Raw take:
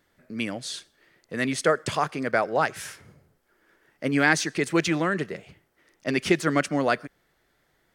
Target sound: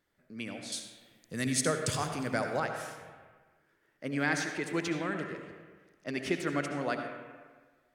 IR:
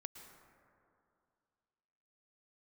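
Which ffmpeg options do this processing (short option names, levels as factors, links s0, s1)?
-filter_complex "[0:a]asettb=1/sr,asplit=3[s0][s1][s2];[s0]atrim=end=0.724[s3];[s1]atrim=start=0.72:end=2.6,asetpts=PTS-STARTPTS,afade=t=in:d=0.004:c=qsin,afade=t=out:st=1.876:d=0.004:c=qsin,bass=f=250:g=10,treble=f=4000:g=15[s4];[s2]atrim=start=2.596[s5];[s3][s4]acrossfade=d=0.004:c1=hsin:c2=qsin[s6];[s6][s5]acrossfade=d=0.004:c1=qsin:c2=hsin[s7];[1:a]atrim=start_sample=2205,asetrate=74970,aresample=44100[s8];[s7][s8]afir=irnorm=-1:irlink=0"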